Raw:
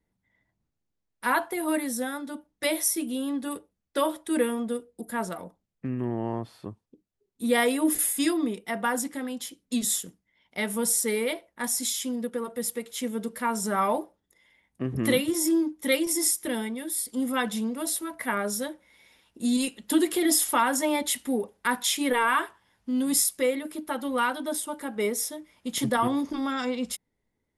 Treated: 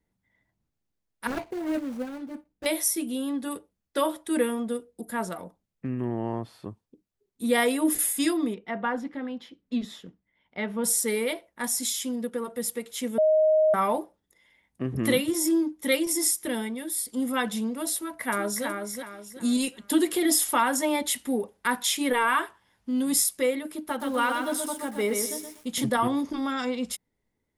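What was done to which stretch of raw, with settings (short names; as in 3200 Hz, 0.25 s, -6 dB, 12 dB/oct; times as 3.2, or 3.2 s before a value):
1.27–2.66 median filter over 41 samples
8.54–10.84 air absorption 300 m
13.18–13.74 bleep 624 Hz -17 dBFS
17.95–18.65 echo throw 0.37 s, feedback 35%, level -5 dB
23.77–25.84 lo-fi delay 0.123 s, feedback 35%, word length 8-bit, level -4.5 dB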